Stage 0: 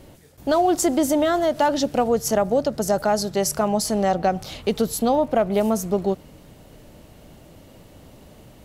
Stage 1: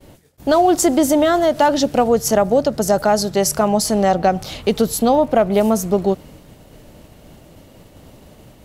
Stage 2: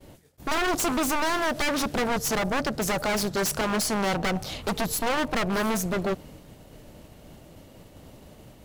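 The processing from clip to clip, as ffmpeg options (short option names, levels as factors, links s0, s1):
-af "agate=range=0.0224:threshold=0.00708:ratio=3:detection=peak,volume=1.78"
-af "aeval=exprs='(tanh(4.47*val(0)+0.75)-tanh(0.75))/4.47':c=same,aeval=exprs='0.106*(abs(mod(val(0)/0.106+3,4)-2)-1)':c=same"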